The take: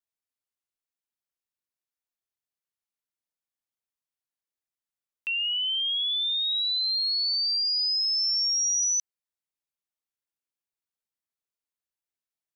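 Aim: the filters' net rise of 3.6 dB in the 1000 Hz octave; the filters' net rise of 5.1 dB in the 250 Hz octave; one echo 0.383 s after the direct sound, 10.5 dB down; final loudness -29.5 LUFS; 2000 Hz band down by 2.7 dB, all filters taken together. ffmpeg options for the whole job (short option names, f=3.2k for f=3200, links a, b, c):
-af "equalizer=f=250:t=o:g=6.5,equalizer=f=1k:t=o:g=6,equalizer=f=2k:t=o:g=-6,aecho=1:1:383:0.299,volume=-5.5dB"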